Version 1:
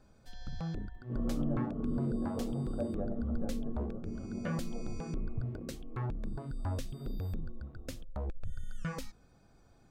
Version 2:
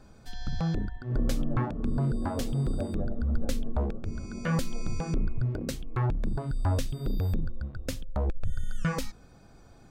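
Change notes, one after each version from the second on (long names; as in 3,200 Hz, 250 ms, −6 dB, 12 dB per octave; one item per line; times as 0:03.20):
first sound +9.0 dB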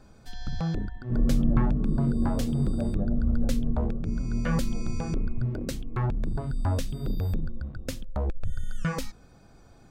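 second sound: remove high-pass filter 360 Hz 12 dB per octave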